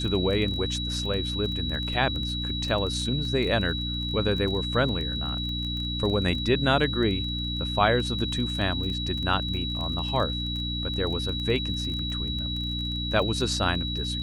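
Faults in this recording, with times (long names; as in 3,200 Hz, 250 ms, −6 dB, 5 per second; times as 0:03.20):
surface crackle 20 per second −31 dBFS
mains hum 60 Hz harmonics 5 −32 dBFS
whistle 3,900 Hz −31 dBFS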